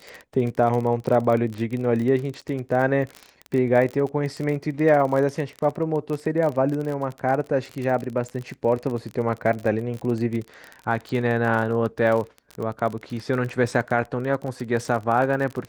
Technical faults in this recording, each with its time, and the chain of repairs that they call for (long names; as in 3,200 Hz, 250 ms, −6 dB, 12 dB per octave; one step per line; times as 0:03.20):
surface crackle 32 per second −27 dBFS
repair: click removal